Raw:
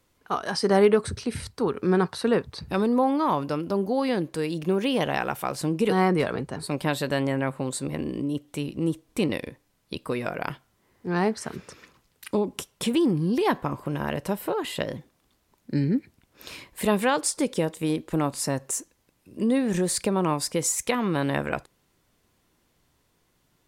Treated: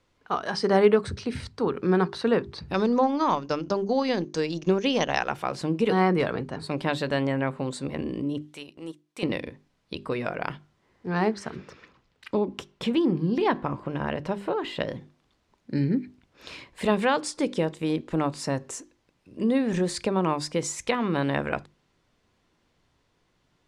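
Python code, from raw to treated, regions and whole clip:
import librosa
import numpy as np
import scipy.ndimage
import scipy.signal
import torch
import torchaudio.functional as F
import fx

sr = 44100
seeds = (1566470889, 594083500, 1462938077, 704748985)

y = fx.chain(x, sr, fx.lowpass_res(hz=6200.0, q=8.8),
    fx.transient(attack_db=4, sustain_db=-11), at=(2.74, 5.3))
y = fx.chain(y, sr, fx.highpass(hz=960.0, slope=6),
    fx.high_shelf(hz=10000.0, db=11.5),
    fx.transient(attack_db=-5, sustain_db=-12), at=(8.42, 9.23))
y = fx.chain(y, sr, fx.high_shelf(hz=8200.0, db=-12.0),
    fx.resample_bad(factor=2, down='none', up='hold'), at=(11.5, 14.8))
y = scipy.signal.sosfilt(scipy.signal.butter(2, 5300.0, 'lowpass', fs=sr, output='sos'), y)
y = fx.hum_notches(y, sr, base_hz=50, count=8)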